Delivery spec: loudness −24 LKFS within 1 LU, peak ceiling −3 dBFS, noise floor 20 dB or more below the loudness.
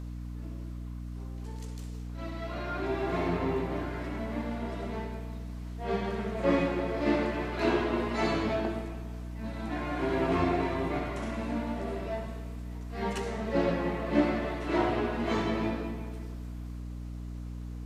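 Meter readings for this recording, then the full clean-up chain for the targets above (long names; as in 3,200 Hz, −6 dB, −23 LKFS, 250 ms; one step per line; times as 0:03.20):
mains hum 60 Hz; hum harmonics up to 300 Hz; level of the hum −36 dBFS; integrated loudness −32.5 LKFS; sample peak −12.5 dBFS; target loudness −24.0 LKFS
→ mains-hum notches 60/120/180/240/300 Hz
level +8.5 dB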